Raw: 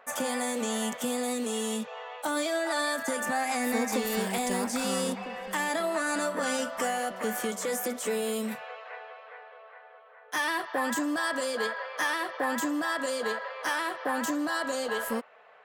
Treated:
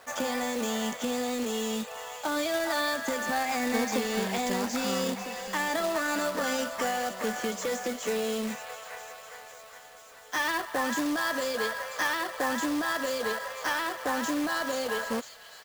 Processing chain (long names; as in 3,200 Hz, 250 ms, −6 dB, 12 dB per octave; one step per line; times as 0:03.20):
delay with a high-pass on its return 495 ms, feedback 69%, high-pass 3,300 Hz, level −9 dB
downsampling to 16,000 Hz
log-companded quantiser 4 bits